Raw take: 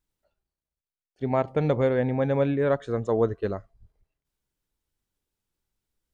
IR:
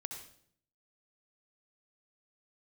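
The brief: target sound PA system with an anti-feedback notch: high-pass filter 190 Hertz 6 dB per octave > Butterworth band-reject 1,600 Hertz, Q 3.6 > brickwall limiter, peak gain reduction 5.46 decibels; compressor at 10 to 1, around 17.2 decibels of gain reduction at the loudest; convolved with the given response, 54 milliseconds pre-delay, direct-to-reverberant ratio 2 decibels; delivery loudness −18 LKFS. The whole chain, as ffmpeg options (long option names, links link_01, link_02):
-filter_complex "[0:a]acompressor=threshold=-36dB:ratio=10,asplit=2[link_01][link_02];[1:a]atrim=start_sample=2205,adelay=54[link_03];[link_02][link_03]afir=irnorm=-1:irlink=0,volume=0dB[link_04];[link_01][link_04]amix=inputs=2:normalize=0,highpass=frequency=190:poles=1,asuperstop=centerf=1600:order=8:qfactor=3.6,volume=23dB,alimiter=limit=-8dB:level=0:latency=1"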